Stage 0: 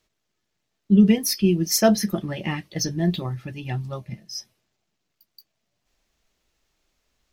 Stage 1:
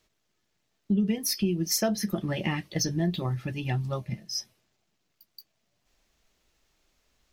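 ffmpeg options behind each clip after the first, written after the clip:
ffmpeg -i in.wav -af "acompressor=threshold=-26dB:ratio=4,volume=1.5dB" out.wav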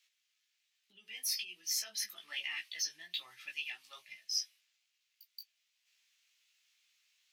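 ffmpeg -i in.wav -af "alimiter=limit=-23.5dB:level=0:latency=1:release=25,highpass=frequency=2500:width_type=q:width=1.6,flanger=delay=16:depth=3.4:speed=1.2,volume=1dB" out.wav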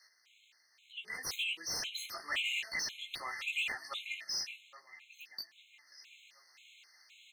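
ffmpeg -i in.wav -filter_complex "[0:a]asplit=2[link_01][link_02];[link_02]adelay=813,lowpass=frequency=2800:poles=1,volume=-18dB,asplit=2[link_03][link_04];[link_04]adelay=813,lowpass=frequency=2800:poles=1,volume=0.51,asplit=2[link_05][link_06];[link_06]adelay=813,lowpass=frequency=2800:poles=1,volume=0.51,asplit=2[link_07][link_08];[link_08]adelay=813,lowpass=frequency=2800:poles=1,volume=0.51[link_09];[link_01][link_03][link_05][link_07][link_09]amix=inputs=5:normalize=0,asplit=2[link_10][link_11];[link_11]highpass=frequency=720:poles=1,volume=28dB,asoftclip=type=tanh:threshold=-22dB[link_12];[link_10][link_12]amix=inputs=2:normalize=0,lowpass=frequency=2400:poles=1,volume=-6dB,afftfilt=real='re*gt(sin(2*PI*1.9*pts/sr)*(1-2*mod(floor(b*sr/1024/2100),2)),0)':imag='im*gt(sin(2*PI*1.9*pts/sr)*(1-2*mod(floor(b*sr/1024/2100),2)),0)':win_size=1024:overlap=0.75,volume=-1dB" out.wav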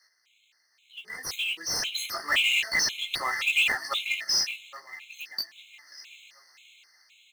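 ffmpeg -i in.wav -af "dynaudnorm=framelen=380:gausssize=9:maxgain=12dB,acrusher=bits=5:mode=log:mix=0:aa=0.000001" out.wav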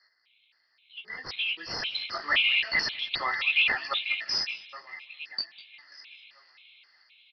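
ffmpeg -i in.wav -af "aecho=1:1:200|400|600:0.0708|0.0283|0.0113,aresample=11025,aresample=44100" out.wav

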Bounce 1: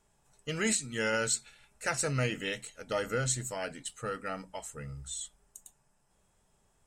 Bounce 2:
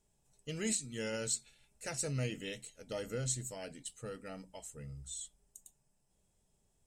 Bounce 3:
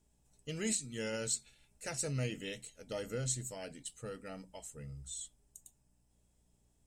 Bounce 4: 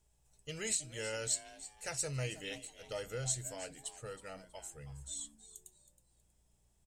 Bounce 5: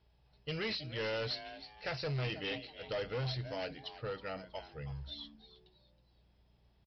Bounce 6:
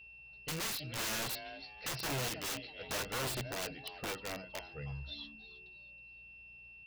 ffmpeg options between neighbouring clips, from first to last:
ffmpeg -i in.wav -af "equalizer=frequency=1300:width_type=o:width=1.6:gain=-11.5,volume=-4dB" out.wav
ffmpeg -i in.wav -af "aeval=exprs='val(0)+0.0002*(sin(2*PI*60*n/s)+sin(2*PI*2*60*n/s)/2+sin(2*PI*3*60*n/s)/3+sin(2*PI*4*60*n/s)/4+sin(2*PI*5*60*n/s)/5)':channel_layout=same" out.wav
ffmpeg -i in.wav -filter_complex "[0:a]equalizer=frequency=240:width_type=o:width=0.91:gain=-14,asplit=4[link_01][link_02][link_03][link_04];[link_02]adelay=320,afreqshift=150,volume=-15dB[link_05];[link_03]adelay=640,afreqshift=300,volume=-25.5dB[link_06];[link_04]adelay=960,afreqshift=450,volume=-35.9dB[link_07];[link_01][link_05][link_06][link_07]amix=inputs=4:normalize=0,volume=1dB" out.wav
ffmpeg -i in.wav -af "highpass=45,aresample=11025,asoftclip=type=hard:threshold=-39.5dB,aresample=44100,volume=6.5dB" out.wav
ffmpeg -i in.wav -af "aeval=exprs='(mod(47.3*val(0)+1,2)-1)/47.3':channel_layout=same,aeval=exprs='val(0)+0.00251*sin(2*PI*2700*n/s)':channel_layout=same" out.wav

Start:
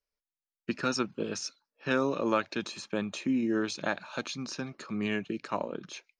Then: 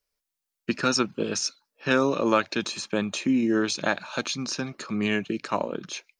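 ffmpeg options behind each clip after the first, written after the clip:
ffmpeg -i in.wav -af "highshelf=frequency=4100:gain=5.5,volume=5.5dB" out.wav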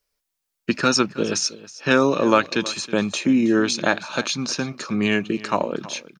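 ffmpeg -i in.wav -af "aecho=1:1:320:0.126,volume=5dB" out.wav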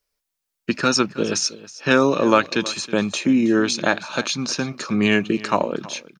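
ffmpeg -i in.wav -af "dynaudnorm=framelen=220:gausssize=9:maxgain=11.5dB,volume=-1dB" out.wav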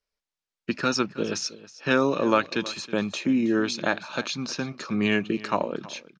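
ffmpeg -i in.wav -af "lowpass=5700,volume=-5.5dB" out.wav

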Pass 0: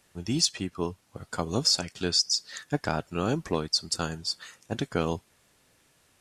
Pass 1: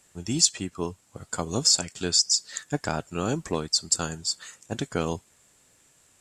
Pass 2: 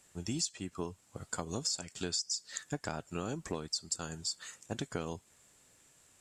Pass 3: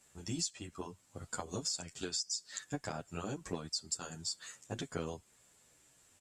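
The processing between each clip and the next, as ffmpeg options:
ffmpeg -i in.wav -af "equalizer=frequency=7500:width_type=o:width=0.35:gain=13.5" out.wav
ffmpeg -i in.wav -af "acompressor=threshold=-30dB:ratio=4,volume=-3.5dB" out.wav
ffmpeg -i in.wav -filter_complex "[0:a]asplit=2[link_01][link_02];[link_02]adelay=9.8,afreqshift=-1.6[link_03];[link_01][link_03]amix=inputs=2:normalize=1,volume=1dB" out.wav

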